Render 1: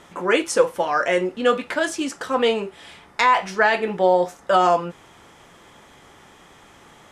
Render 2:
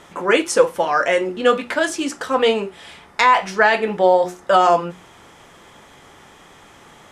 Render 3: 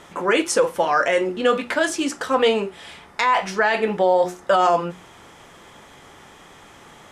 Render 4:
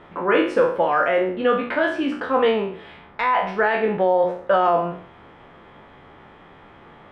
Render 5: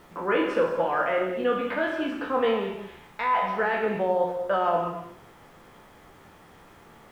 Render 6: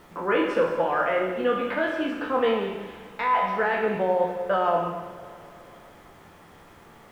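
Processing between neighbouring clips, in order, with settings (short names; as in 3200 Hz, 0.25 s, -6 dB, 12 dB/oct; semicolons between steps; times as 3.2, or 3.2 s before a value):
notches 60/120/180/240/300/360 Hz; gain +3 dB
limiter -8 dBFS, peak gain reduction 6.5 dB
spectral trails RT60 0.52 s; air absorption 450 m
non-linear reverb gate 0.25 s flat, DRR 5 dB; added noise pink -54 dBFS; gain -6.5 dB
Schroeder reverb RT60 3.7 s, combs from 32 ms, DRR 13.5 dB; gain +1 dB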